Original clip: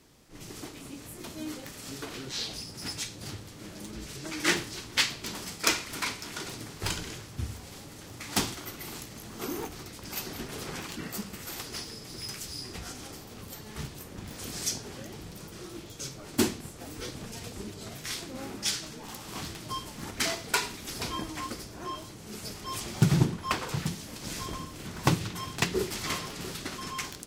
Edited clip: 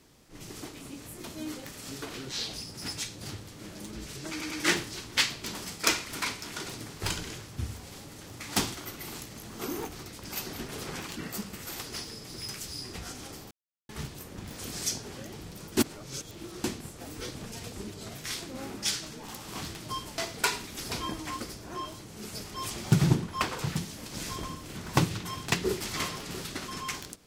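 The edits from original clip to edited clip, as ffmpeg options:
ffmpeg -i in.wav -filter_complex "[0:a]asplit=8[link_01][link_02][link_03][link_04][link_05][link_06][link_07][link_08];[link_01]atrim=end=4.412[link_09];[link_02]atrim=start=4.308:end=4.412[link_10];[link_03]atrim=start=4.308:end=13.31,asetpts=PTS-STARTPTS,afade=type=out:start_time=8.998:duration=0.004:curve=hsin[link_11];[link_04]atrim=start=13.31:end=13.69,asetpts=PTS-STARTPTS,volume=0[link_12];[link_05]atrim=start=13.69:end=15.572,asetpts=PTS-STARTPTS,afade=type=in:duration=0.004:curve=hsin[link_13];[link_06]atrim=start=15.568:end=16.442,asetpts=PTS-STARTPTS,areverse[link_14];[link_07]atrim=start=16.438:end=19.982[link_15];[link_08]atrim=start=20.278[link_16];[link_09][link_10]acrossfade=duration=0.004:curve1=hsin:curve2=hsin[link_17];[link_11][link_12][link_13]concat=n=3:v=0:a=1[link_18];[link_17][link_18]acrossfade=duration=0.004:curve1=hsin:curve2=hsin[link_19];[link_19][link_14]acrossfade=duration=0.004:curve1=hsin:curve2=hsin[link_20];[link_20][link_15]acrossfade=duration=0.004:curve1=hsin:curve2=hsin[link_21];[link_21][link_16]acrossfade=duration=0.004:curve1=hsin:curve2=hsin" out.wav

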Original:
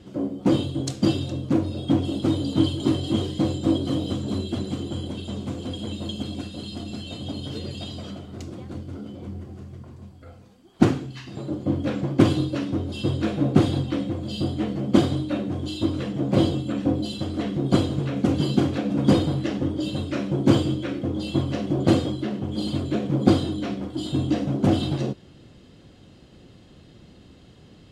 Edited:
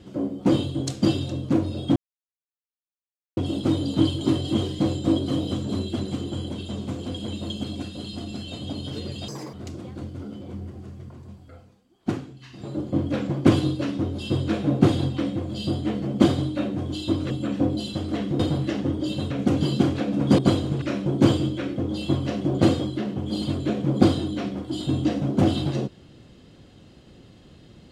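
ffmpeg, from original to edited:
ffmpeg -i in.wav -filter_complex "[0:a]asplit=11[link_01][link_02][link_03][link_04][link_05][link_06][link_07][link_08][link_09][link_10][link_11];[link_01]atrim=end=1.96,asetpts=PTS-STARTPTS,afade=type=out:start_time=1.956:duration=0.004:curve=hsin,apad=pad_dur=1.41[link_12];[link_02]atrim=start=1.96:end=7.874,asetpts=PTS-STARTPTS,afade=type=in:duration=0.004:curve=hsin[link_13];[link_03]atrim=start=7.87:end=8.27,asetpts=PTS-STARTPTS,asetrate=69237,aresample=44100[link_14];[link_04]atrim=start=8.266:end=10.54,asetpts=PTS-STARTPTS,afade=type=out:start_time=1.914:duration=0.36:silence=0.354813[link_15];[link_05]atrim=start=10.54:end=11.13,asetpts=PTS-STARTPTS,volume=-9dB[link_16];[link_06]atrim=start=11.13:end=16.042,asetpts=PTS-STARTPTS,afade=type=in:duration=0.36:silence=0.354813[link_17];[link_07]atrim=start=16.558:end=17.652[link_18];[link_08]atrim=start=19.158:end=20.072[link_19];[link_09]atrim=start=18.078:end=19.162[link_20];[link_10]atrim=start=17.648:end=18.082[link_21];[link_11]atrim=start=20.068[link_22];[link_12][link_13]concat=n=2:v=0:a=1[link_23];[link_23][link_14]acrossfade=duration=0.004:curve1=hsin:curve2=hsin[link_24];[link_15][link_16][link_17]concat=n=3:v=0:a=1[link_25];[link_24][link_25]acrossfade=duration=0.004:curve1=hsin:curve2=hsin[link_26];[link_26][link_18]acrossfade=duration=0.004:curve1=hsin:curve2=hsin[link_27];[link_27][link_19]acrossfade=duration=0.004:curve1=hsin:curve2=hsin[link_28];[link_28][link_20]acrossfade=duration=0.004:curve1=hsin:curve2=hsin[link_29];[link_29][link_21]acrossfade=duration=0.004:curve1=hsin:curve2=hsin[link_30];[link_30][link_22]acrossfade=duration=0.004:curve1=hsin:curve2=hsin" out.wav

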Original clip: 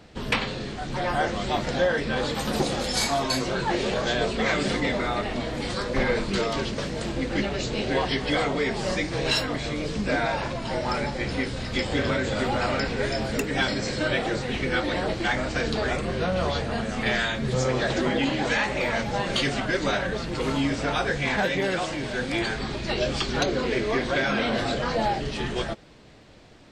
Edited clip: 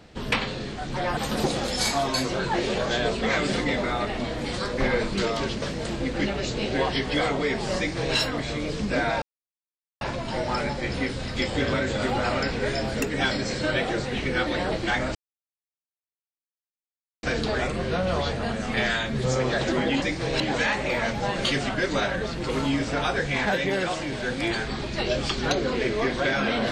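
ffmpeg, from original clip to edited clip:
ffmpeg -i in.wav -filter_complex "[0:a]asplit=6[link_01][link_02][link_03][link_04][link_05][link_06];[link_01]atrim=end=1.172[link_07];[link_02]atrim=start=2.328:end=10.38,asetpts=PTS-STARTPTS,afade=type=out:start_time=8.048:duration=0.004:curve=hsin,apad=pad_dur=0.79[link_08];[link_03]atrim=start=10.38:end=15.52,asetpts=PTS-STARTPTS,afade=type=in:duration=0.004:curve=hsin,afade=type=out:start_time=5.136:duration=0.004:curve=hsin,apad=pad_dur=2.08[link_09];[link_04]atrim=start=15.52:end=18.312,asetpts=PTS-STARTPTS,afade=type=in:duration=0.004:curve=hsin[link_10];[link_05]atrim=start=8.938:end=9.322[link_11];[link_06]atrim=start=18.308[link_12];[link_08][link_09][link_10]concat=n=3:v=0:a=1[link_13];[link_07][link_13]acrossfade=duration=0.004:curve1=hsin:curve2=hsin[link_14];[link_14][link_11]acrossfade=duration=0.004:curve1=hsin:curve2=hsin[link_15];[link_15][link_12]acrossfade=duration=0.004:curve1=hsin:curve2=hsin" out.wav

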